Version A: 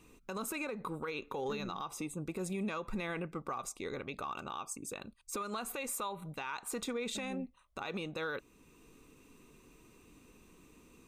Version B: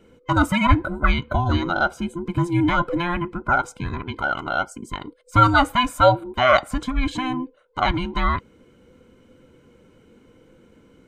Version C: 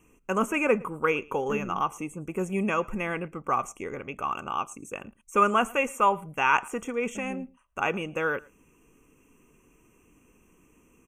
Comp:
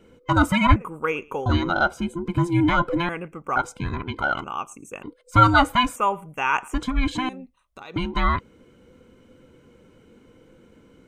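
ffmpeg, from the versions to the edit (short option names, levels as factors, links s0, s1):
-filter_complex "[2:a]asplit=4[s0][s1][s2][s3];[1:a]asplit=6[s4][s5][s6][s7][s8][s9];[s4]atrim=end=0.762[s10];[s0]atrim=start=0.758:end=1.462[s11];[s5]atrim=start=1.458:end=3.092[s12];[s1]atrim=start=3.088:end=3.562[s13];[s6]atrim=start=3.558:end=4.442[s14];[s2]atrim=start=4.438:end=5.032[s15];[s7]atrim=start=5.028:end=5.962[s16];[s3]atrim=start=5.958:end=6.742[s17];[s8]atrim=start=6.738:end=7.292[s18];[0:a]atrim=start=7.288:end=7.962[s19];[s9]atrim=start=7.958[s20];[s10][s11]acrossfade=d=0.004:c1=hsin:c2=hsin[s21];[s21][s12]acrossfade=d=0.004:c1=hsin:c2=hsin[s22];[s22][s13]acrossfade=d=0.004:c1=hsin:c2=hsin[s23];[s23][s14]acrossfade=d=0.004:c1=hsin:c2=hsin[s24];[s24][s15]acrossfade=d=0.004:c1=hsin:c2=hsin[s25];[s25][s16]acrossfade=d=0.004:c1=hsin:c2=hsin[s26];[s26][s17]acrossfade=d=0.004:c1=hsin:c2=hsin[s27];[s27][s18]acrossfade=d=0.004:c1=hsin:c2=hsin[s28];[s28][s19]acrossfade=d=0.004:c1=hsin:c2=hsin[s29];[s29][s20]acrossfade=d=0.004:c1=hsin:c2=hsin"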